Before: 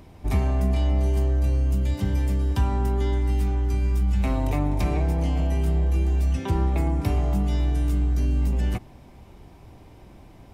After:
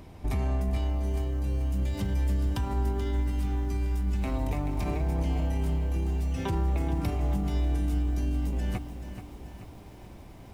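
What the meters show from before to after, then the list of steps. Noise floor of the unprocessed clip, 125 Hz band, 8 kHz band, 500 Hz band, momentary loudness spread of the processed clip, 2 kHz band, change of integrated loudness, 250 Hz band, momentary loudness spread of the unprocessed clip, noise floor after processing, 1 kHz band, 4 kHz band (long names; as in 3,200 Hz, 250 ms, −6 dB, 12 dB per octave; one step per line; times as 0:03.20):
−48 dBFS, −5.5 dB, can't be measured, −5.0 dB, 15 LU, −4.0 dB, −5.5 dB, −4.5 dB, 2 LU, −46 dBFS, −4.5 dB, −4.0 dB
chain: brickwall limiter −21.5 dBFS, peak gain reduction 9 dB
feedback echo at a low word length 432 ms, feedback 55%, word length 9 bits, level −10 dB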